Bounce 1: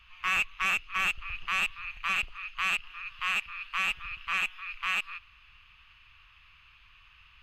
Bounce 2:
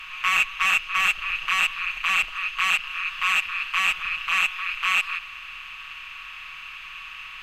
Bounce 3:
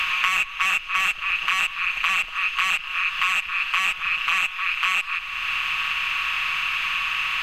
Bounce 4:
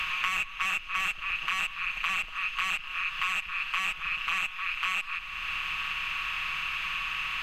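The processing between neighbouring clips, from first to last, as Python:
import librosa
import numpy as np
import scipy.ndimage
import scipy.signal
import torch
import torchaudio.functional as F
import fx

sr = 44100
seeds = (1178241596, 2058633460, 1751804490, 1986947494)

y1 = fx.bin_compress(x, sr, power=0.6)
y1 = fx.low_shelf(y1, sr, hz=450.0, db=-11.5)
y1 = y1 + 0.74 * np.pad(y1, (int(6.3 * sr / 1000.0), 0))[:len(y1)]
y1 = y1 * librosa.db_to_amplitude(3.5)
y2 = fx.band_squash(y1, sr, depth_pct=100)
y3 = fx.low_shelf(y2, sr, hz=340.0, db=8.0)
y3 = y3 * librosa.db_to_amplitude(-8.0)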